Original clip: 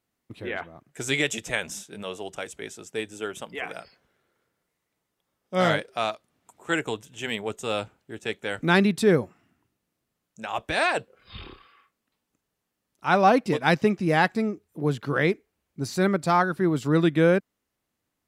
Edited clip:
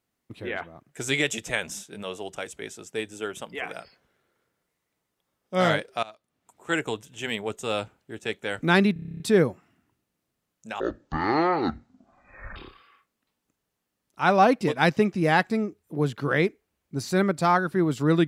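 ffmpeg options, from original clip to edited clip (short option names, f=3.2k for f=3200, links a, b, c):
-filter_complex "[0:a]asplit=13[a][b][c][d][e][f][g][h][i][j][k][l][m];[a]atrim=end=6.03,asetpts=PTS-STARTPTS,afade=t=out:st=6.026:d=0.004:c=hsin:silence=0.0891251[n];[b]atrim=start=6.03:end=8.962,asetpts=PTS-STARTPTS,afade=t=in:d=0.75:silence=0.0891251[o];[c]atrim=start=8.928:end=8.962[p];[d]atrim=start=8.928:end=8.962[q];[e]atrim=start=8.928:end=8.962[r];[f]atrim=start=8.928:end=8.962[s];[g]atrim=start=8.928:end=8.962[t];[h]atrim=start=8.928:end=8.962[u];[i]atrim=start=8.928:end=8.962[v];[j]atrim=start=8.928:end=8.962[w];[k]atrim=start=8.928:end=10.534[x];[l]atrim=start=10.53:end=11.41,asetpts=PTS-STARTPTS,asetrate=22050,aresample=44100[y];[m]atrim=start=11.406[z];[n][o]concat=n=2:v=0:a=1[aa];[aa][p]acrossfade=d=0.004:c1=hsin:c2=hsin[ab];[ab][q]acrossfade=d=0.004:c1=hsin:c2=hsin[ac];[ac][r]acrossfade=d=0.004:c1=hsin:c2=hsin[ad];[ad][s]acrossfade=d=0.004:c1=hsin:c2=hsin[ae];[ae][t]acrossfade=d=0.004:c1=hsin:c2=hsin[af];[af][u]acrossfade=d=0.004:c1=hsin:c2=hsin[ag];[ag][v]acrossfade=d=0.004:c1=hsin:c2=hsin[ah];[ah][w]acrossfade=d=0.004:c1=hsin:c2=hsin[ai];[ai][x]acrossfade=d=0.004:c1=hsin:c2=hsin[aj];[aj][y]acrossfade=d=0.004:c1=hsin:c2=hsin[ak];[ak][z]acrossfade=d=0.004:c1=hsin:c2=hsin"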